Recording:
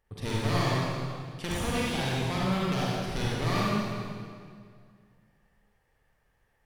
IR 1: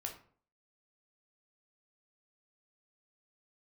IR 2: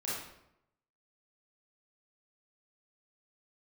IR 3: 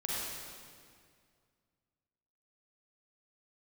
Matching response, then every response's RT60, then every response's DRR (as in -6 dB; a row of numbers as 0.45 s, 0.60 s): 3; 0.50 s, 0.80 s, 2.1 s; 1.5 dB, -8.5 dB, -6.0 dB